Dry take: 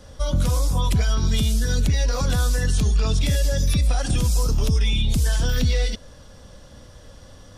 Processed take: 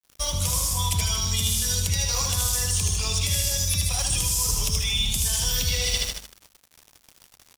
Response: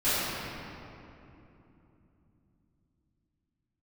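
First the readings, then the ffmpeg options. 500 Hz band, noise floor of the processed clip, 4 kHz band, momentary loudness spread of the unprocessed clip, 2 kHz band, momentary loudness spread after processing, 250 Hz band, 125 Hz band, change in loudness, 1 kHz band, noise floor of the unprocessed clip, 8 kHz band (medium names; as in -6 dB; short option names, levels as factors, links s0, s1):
-8.0 dB, -62 dBFS, +5.5 dB, 1 LU, -1.0 dB, 2 LU, -11.0 dB, -6.0 dB, -1.0 dB, -1.5 dB, -45 dBFS, +9.5 dB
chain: -af "equalizer=f=250:t=o:w=0.67:g=-5,equalizer=f=1000:t=o:w=0.67:g=11,equalizer=f=4000:t=o:w=0.67:g=-6,aecho=1:1:77|154|231|308|385|462|539|616:0.562|0.337|0.202|0.121|0.0729|0.0437|0.0262|0.0157,aeval=exprs='sgn(val(0))*max(abs(val(0))-0.00266,0)':c=same,equalizer=f=91:w=2.3:g=8.5,aexciter=amount=4.7:drive=8.9:freq=2200,aeval=exprs='sgn(val(0))*max(abs(val(0))-0.0355,0)':c=same,areverse,acompressor=threshold=0.0891:ratio=6,areverse,bandreject=f=49.03:t=h:w=4,bandreject=f=98.06:t=h:w=4,bandreject=f=147.09:t=h:w=4,bandreject=f=196.12:t=h:w=4,bandreject=f=245.15:t=h:w=4"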